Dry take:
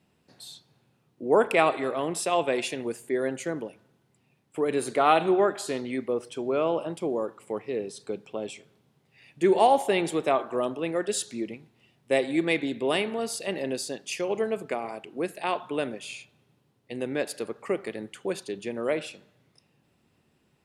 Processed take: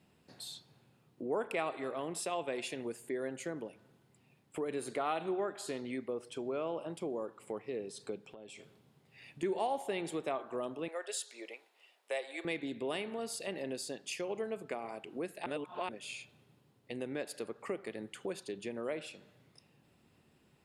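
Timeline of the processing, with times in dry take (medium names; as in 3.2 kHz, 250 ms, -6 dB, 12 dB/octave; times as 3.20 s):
8.28–9.43 s: compression 10:1, threshold -46 dBFS
10.88–12.45 s: high-pass 520 Hz 24 dB/octave
15.46–15.89 s: reverse
whole clip: band-stop 5.9 kHz, Q 18; compression 2:1, threshold -43 dBFS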